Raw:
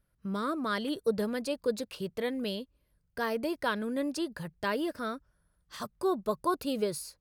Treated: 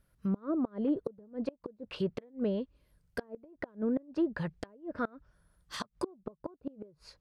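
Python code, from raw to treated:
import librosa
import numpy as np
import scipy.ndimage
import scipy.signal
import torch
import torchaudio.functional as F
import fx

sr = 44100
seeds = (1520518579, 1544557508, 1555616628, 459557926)

y = fx.env_lowpass_down(x, sr, base_hz=580.0, full_db=-28.0)
y = fx.gate_flip(y, sr, shuts_db=-26.0, range_db=-28)
y = y * 10.0 ** (4.5 / 20.0)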